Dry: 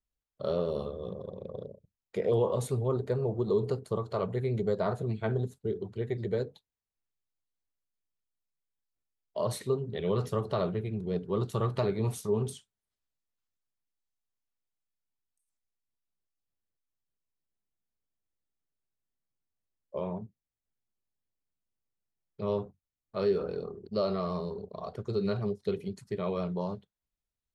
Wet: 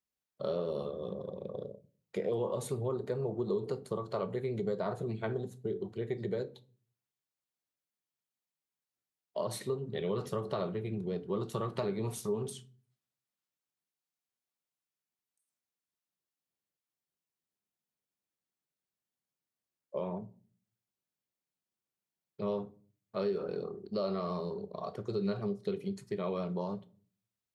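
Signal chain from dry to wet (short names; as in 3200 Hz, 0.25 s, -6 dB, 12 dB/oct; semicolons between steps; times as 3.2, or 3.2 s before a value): HPF 130 Hz 12 dB/oct; compressor 2.5:1, threshold -32 dBFS, peak gain reduction 7 dB; on a send: reverb RT60 0.45 s, pre-delay 5 ms, DRR 13 dB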